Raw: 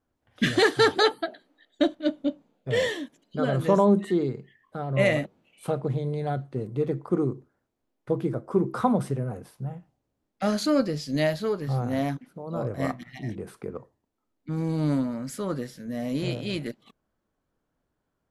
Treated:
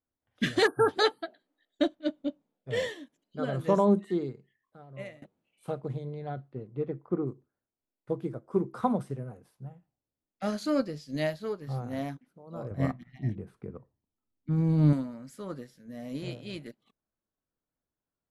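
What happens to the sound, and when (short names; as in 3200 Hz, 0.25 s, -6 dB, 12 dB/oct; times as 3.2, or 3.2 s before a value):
0.67–0.89 spectral delete 1700–8700 Hz
4.36–5.22 fade out linear, to -19 dB
6.04–7.26 LPF 4600 Hz -> 2100 Hz
12.71–14.93 tone controls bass +10 dB, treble -7 dB
whole clip: upward expander 1.5:1, over -39 dBFS; gain -2.5 dB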